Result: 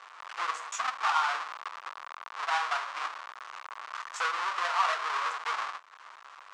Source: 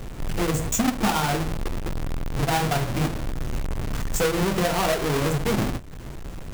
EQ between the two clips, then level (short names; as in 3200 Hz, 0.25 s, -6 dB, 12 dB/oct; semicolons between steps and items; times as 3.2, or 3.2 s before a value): ladder high-pass 1000 Hz, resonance 60%; LPF 6700 Hz 12 dB/oct; air absorption 59 m; +5.5 dB